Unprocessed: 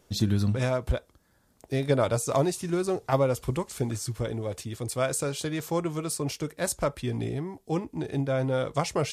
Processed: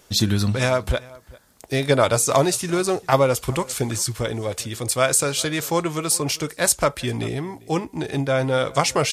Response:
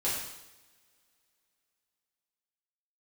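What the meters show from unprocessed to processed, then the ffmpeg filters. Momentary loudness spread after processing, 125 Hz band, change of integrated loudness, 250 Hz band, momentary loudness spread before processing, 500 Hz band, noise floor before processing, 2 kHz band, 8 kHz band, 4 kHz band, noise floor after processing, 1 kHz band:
9 LU, +4.0 dB, +7.0 dB, +4.5 dB, 7 LU, +6.5 dB, -65 dBFS, +11.0 dB, +12.5 dB, +12.0 dB, -53 dBFS, +9.0 dB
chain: -filter_complex "[0:a]tiltshelf=f=780:g=-4.5,asplit=2[a][b];[b]adelay=396.5,volume=-22dB,highshelf=f=4k:g=-8.92[c];[a][c]amix=inputs=2:normalize=0,volume=8dB"

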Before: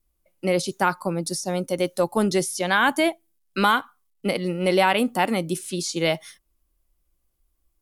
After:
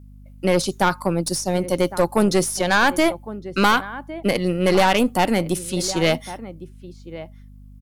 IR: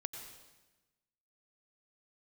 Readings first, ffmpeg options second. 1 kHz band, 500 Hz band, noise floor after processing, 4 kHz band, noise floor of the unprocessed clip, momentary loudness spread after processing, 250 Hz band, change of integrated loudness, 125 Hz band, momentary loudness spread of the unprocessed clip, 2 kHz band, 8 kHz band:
+2.5 dB, +3.5 dB, -43 dBFS, +3.0 dB, -72 dBFS, 18 LU, +4.0 dB, +3.0 dB, +5.0 dB, 8 LU, +2.0 dB, +4.0 dB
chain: -filter_complex "[0:a]asplit=2[a][b];[b]adelay=1108,volume=-15dB,highshelf=f=4k:g=-24.9[c];[a][c]amix=inputs=2:normalize=0,aeval=exprs='0.501*(cos(1*acos(clip(val(0)/0.501,-1,1)))-cos(1*PI/2))+0.224*(cos(2*acos(clip(val(0)/0.501,-1,1)))-cos(2*PI/2))+0.0794*(cos(5*acos(clip(val(0)/0.501,-1,1)))-cos(5*PI/2))+0.0355*(cos(6*acos(clip(val(0)/0.501,-1,1)))-cos(6*PI/2))':c=same,aeval=exprs='val(0)+0.00891*(sin(2*PI*50*n/s)+sin(2*PI*2*50*n/s)/2+sin(2*PI*3*50*n/s)/3+sin(2*PI*4*50*n/s)/4+sin(2*PI*5*50*n/s)/5)':c=same,volume=-1dB"

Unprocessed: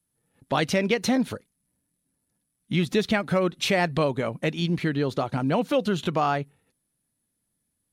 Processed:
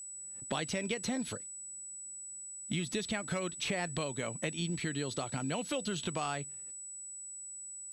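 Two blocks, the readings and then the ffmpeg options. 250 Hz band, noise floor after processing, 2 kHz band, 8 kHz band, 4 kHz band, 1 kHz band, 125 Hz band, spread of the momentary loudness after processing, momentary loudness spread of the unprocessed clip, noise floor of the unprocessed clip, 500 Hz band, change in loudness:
-12.0 dB, -46 dBFS, -9.5 dB, +5.0 dB, -7.0 dB, -12.5 dB, -11.0 dB, 8 LU, 5 LU, -78 dBFS, -13.0 dB, -11.5 dB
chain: -filter_complex "[0:a]acrossover=split=80|2200[a][b][c];[a]acompressor=threshold=-56dB:ratio=4[d];[b]acompressor=threshold=-36dB:ratio=4[e];[c]acompressor=threshold=-40dB:ratio=4[f];[d][e][f]amix=inputs=3:normalize=0,lowpass=f=11k:w=0.5412,lowpass=f=11k:w=1.3066,aeval=exprs='val(0)+0.00708*sin(2*PI*7900*n/s)':c=same"

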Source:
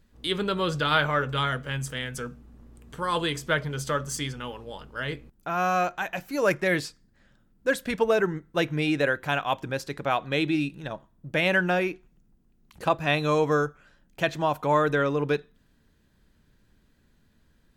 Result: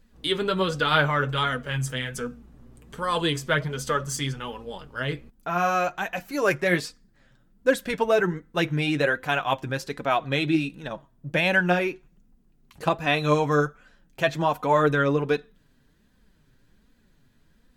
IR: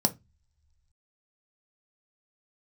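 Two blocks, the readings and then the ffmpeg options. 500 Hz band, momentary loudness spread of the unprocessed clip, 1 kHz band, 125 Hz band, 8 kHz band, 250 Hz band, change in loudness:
+1.5 dB, 11 LU, +1.5 dB, +2.5 dB, +1.5 dB, +1.5 dB, +1.5 dB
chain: -af "flanger=delay=3.9:depth=3.9:regen=34:speed=1.3:shape=sinusoidal,volume=5.5dB"

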